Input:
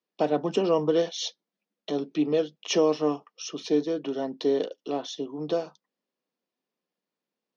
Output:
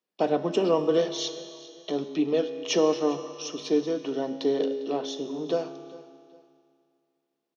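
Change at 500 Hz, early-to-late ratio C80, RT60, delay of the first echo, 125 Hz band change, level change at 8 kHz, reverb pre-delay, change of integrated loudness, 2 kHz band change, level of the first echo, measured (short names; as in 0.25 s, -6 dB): +0.5 dB, 10.5 dB, 2.3 s, 0.402 s, -1.5 dB, n/a, 4 ms, +0.5 dB, +0.5 dB, -20.0 dB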